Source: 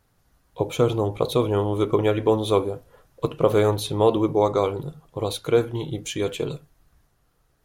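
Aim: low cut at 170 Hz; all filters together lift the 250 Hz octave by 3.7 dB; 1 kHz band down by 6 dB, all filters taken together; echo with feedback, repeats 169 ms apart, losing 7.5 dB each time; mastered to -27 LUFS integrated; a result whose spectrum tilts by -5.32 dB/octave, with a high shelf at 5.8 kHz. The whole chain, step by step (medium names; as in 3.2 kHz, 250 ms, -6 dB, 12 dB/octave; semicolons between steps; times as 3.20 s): high-pass 170 Hz; peaking EQ 250 Hz +7 dB; peaking EQ 1 kHz -8 dB; treble shelf 5.8 kHz -5.5 dB; feedback delay 169 ms, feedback 42%, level -7.5 dB; trim -5 dB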